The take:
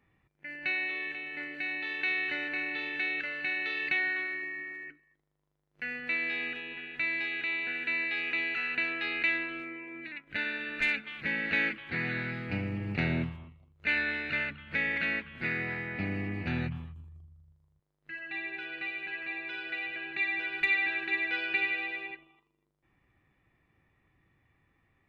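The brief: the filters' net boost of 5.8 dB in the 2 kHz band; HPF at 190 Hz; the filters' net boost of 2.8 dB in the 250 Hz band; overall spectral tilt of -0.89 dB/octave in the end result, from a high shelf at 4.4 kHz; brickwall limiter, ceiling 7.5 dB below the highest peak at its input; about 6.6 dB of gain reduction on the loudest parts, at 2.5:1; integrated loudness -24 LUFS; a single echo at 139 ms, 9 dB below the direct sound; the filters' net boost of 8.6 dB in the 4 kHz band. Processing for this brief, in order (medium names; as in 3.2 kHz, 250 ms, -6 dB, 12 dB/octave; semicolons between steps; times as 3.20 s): high-pass 190 Hz; peaking EQ 250 Hz +5.5 dB; peaking EQ 2 kHz +3.5 dB; peaking EQ 4 kHz +7.5 dB; treble shelf 4.4 kHz +5 dB; compression 2.5:1, threshold -27 dBFS; peak limiter -21 dBFS; delay 139 ms -9 dB; trim +5.5 dB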